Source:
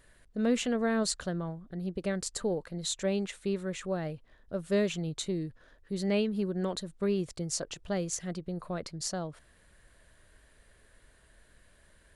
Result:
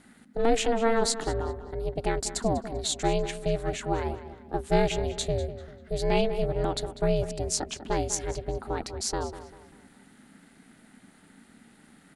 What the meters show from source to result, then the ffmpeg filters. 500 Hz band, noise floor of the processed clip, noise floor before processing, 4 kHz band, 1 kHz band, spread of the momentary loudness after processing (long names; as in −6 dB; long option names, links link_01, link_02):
+5.5 dB, −57 dBFS, −63 dBFS, +4.5 dB, +11.5 dB, 10 LU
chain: -filter_complex "[0:a]aeval=exprs='val(0)*sin(2*PI*230*n/s)':channel_layout=same,asplit=2[link_01][link_02];[link_02]adelay=196,lowpass=frequency=4000:poles=1,volume=-12.5dB,asplit=2[link_03][link_04];[link_04]adelay=196,lowpass=frequency=4000:poles=1,volume=0.39,asplit=2[link_05][link_06];[link_06]adelay=196,lowpass=frequency=4000:poles=1,volume=0.39,asplit=2[link_07][link_08];[link_08]adelay=196,lowpass=frequency=4000:poles=1,volume=0.39[link_09];[link_01][link_03][link_05][link_07][link_09]amix=inputs=5:normalize=0,volume=7.5dB"